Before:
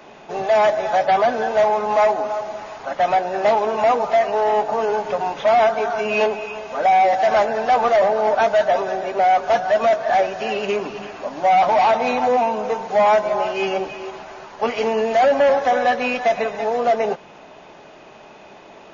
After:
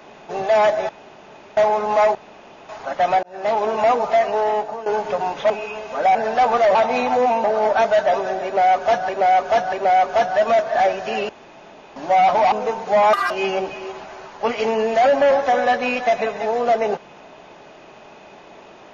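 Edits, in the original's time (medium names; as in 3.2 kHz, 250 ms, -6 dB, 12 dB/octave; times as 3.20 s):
0.89–1.57 s: room tone
2.15–2.69 s: room tone
3.23–3.65 s: fade in
4.22–4.86 s: fade out equal-power, to -15 dB
5.50–6.30 s: delete
6.95–7.46 s: delete
9.07–9.71 s: loop, 3 plays
10.63–11.30 s: room tone
11.86–12.55 s: move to 8.06 s
13.16–13.49 s: speed 189%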